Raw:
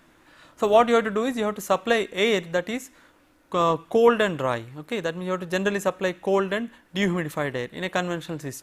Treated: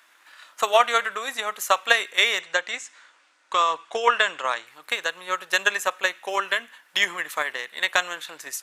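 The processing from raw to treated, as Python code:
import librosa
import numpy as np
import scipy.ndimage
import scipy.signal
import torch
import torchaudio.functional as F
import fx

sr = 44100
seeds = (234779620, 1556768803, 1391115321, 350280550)

y = scipy.signal.sosfilt(scipy.signal.butter(2, 1200.0, 'highpass', fs=sr, output='sos'), x)
y = fx.transient(y, sr, attack_db=7, sustain_db=2)
y = fx.steep_lowpass(y, sr, hz=8600.0, slope=36, at=(2.39, 4.67))
y = y * librosa.db_to_amplitude(4.0)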